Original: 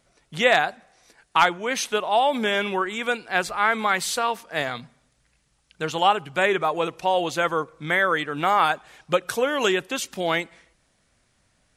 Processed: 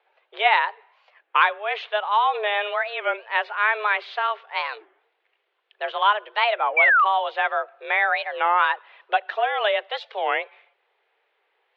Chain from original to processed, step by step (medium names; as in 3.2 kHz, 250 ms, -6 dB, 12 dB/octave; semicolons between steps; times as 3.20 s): painted sound fall, 6.77–7.05 s, 870–2500 Hz -16 dBFS; mistuned SSB +210 Hz 220–3200 Hz; warped record 33 1/3 rpm, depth 250 cents